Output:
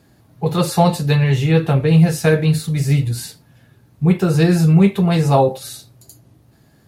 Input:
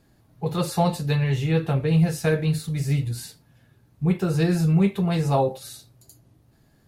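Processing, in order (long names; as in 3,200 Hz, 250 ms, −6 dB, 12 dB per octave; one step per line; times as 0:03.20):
high-pass filter 62 Hz
level +7.5 dB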